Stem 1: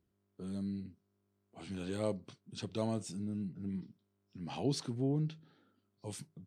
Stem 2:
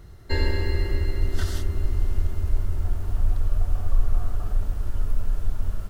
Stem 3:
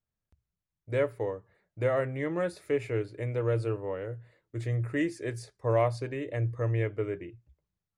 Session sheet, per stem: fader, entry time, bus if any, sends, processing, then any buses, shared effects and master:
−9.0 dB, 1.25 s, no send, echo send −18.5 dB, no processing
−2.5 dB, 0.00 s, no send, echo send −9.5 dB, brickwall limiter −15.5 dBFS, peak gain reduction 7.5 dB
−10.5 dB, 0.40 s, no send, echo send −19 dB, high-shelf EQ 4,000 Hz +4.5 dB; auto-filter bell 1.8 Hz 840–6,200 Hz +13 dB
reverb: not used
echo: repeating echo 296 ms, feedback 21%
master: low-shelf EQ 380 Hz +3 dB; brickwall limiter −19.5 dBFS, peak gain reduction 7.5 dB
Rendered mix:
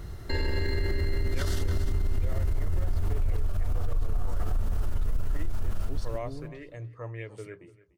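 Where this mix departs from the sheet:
stem 2 −2.5 dB → +6.0 dB
stem 3: missing high-shelf EQ 4,000 Hz +4.5 dB
master: missing low-shelf EQ 380 Hz +3 dB

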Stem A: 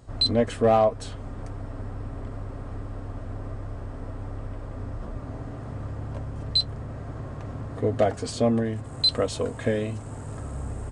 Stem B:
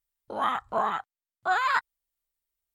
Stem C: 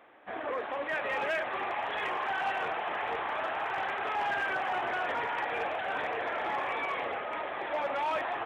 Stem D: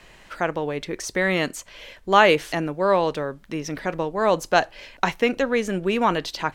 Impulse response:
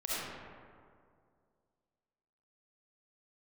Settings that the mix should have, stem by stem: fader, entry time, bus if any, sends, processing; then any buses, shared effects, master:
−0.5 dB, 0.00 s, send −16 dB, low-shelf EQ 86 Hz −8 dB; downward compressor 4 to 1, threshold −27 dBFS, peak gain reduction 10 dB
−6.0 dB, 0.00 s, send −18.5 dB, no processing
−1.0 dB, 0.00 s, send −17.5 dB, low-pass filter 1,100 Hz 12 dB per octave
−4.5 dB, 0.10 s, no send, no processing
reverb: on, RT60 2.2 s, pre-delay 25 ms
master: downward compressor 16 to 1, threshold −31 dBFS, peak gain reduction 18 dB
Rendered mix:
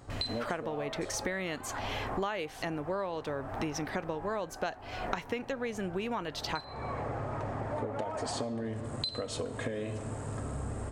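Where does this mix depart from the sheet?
stem B −6.0 dB → −12.5 dB
stem D −4.5 dB → +5.0 dB

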